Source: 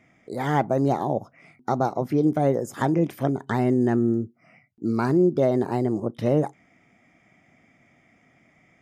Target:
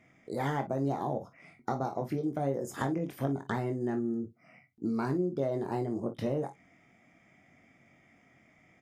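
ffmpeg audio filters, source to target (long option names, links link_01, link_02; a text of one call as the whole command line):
ffmpeg -i in.wav -af "acompressor=threshold=-25dB:ratio=6,aecho=1:1:22|46|57:0.447|0.178|0.178,volume=-4dB" out.wav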